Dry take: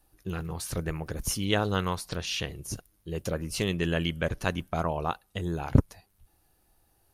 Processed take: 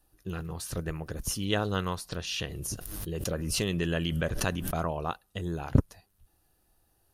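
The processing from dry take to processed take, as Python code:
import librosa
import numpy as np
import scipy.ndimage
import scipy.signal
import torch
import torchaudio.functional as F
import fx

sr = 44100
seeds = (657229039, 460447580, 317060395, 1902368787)

y = fx.peak_eq(x, sr, hz=860.0, db=-2.5, octaves=0.32)
y = fx.notch(y, sr, hz=2200.0, q=9.9)
y = fx.pre_swell(y, sr, db_per_s=27.0, at=(2.29, 4.94))
y = y * 10.0 ** (-2.0 / 20.0)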